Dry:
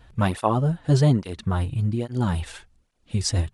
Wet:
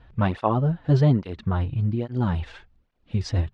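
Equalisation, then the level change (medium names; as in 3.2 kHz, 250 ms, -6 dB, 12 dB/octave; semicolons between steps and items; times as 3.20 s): distance through air 220 m; 0.0 dB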